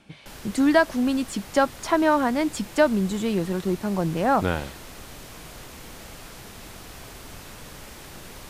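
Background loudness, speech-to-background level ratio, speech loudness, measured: -41.5 LUFS, 18.0 dB, -23.5 LUFS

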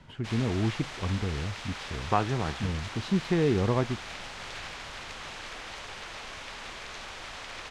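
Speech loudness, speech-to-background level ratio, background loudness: -30.0 LUFS, 9.5 dB, -39.5 LUFS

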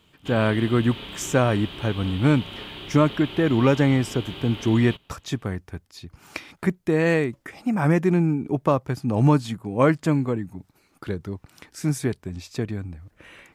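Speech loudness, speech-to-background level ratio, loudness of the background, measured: -23.0 LUFS, 13.5 dB, -36.5 LUFS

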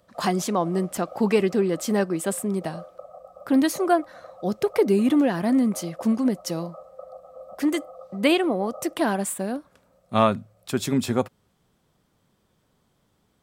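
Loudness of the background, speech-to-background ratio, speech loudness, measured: -44.0 LUFS, 20.0 dB, -24.0 LUFS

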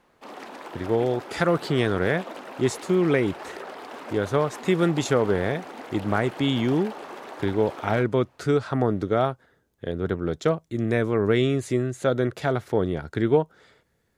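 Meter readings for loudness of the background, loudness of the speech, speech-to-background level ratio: -39.0 LUFS, -25.0 LUFS, 14.0 dB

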